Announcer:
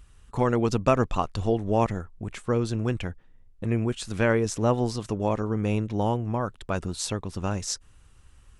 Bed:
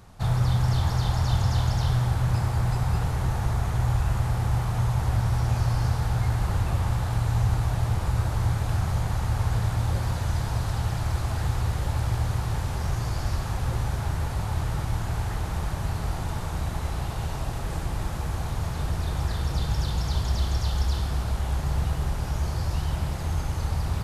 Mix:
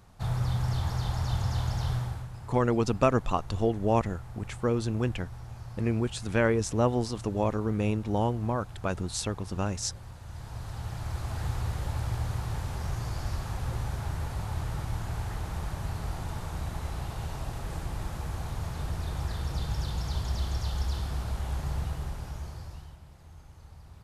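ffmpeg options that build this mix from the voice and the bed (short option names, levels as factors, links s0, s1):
-filter_complex "[0:a]adelay=2150,volume=0.794[s0];[1:a]volume=2.24,afade=t=out:st=1.92:d=0.37:silence=0.237137,afade=t=in:st=10.21:d=1.27:silence=0.223872,afade=t=out:st=21.67:d=1.31:silence=0.133352[s1];[s0][s1]amix=inputs=2:normalize=0"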